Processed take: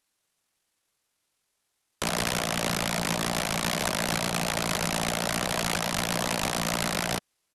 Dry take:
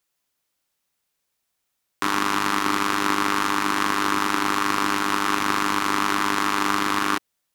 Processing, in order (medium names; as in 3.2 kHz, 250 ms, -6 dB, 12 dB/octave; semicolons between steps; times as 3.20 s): integer overflow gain 18.5 dB; pitch shift -9.5 st